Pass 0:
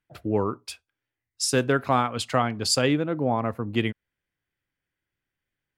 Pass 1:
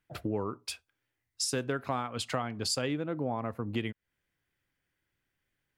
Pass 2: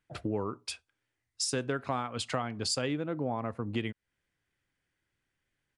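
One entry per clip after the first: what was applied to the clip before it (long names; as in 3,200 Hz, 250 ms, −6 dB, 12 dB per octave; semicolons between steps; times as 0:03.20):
downward compressor 3 to 1, threshold −36 dBFS, peak gain reduction 14.5 dB; level +3 dB
downsampling to 22,050 Hz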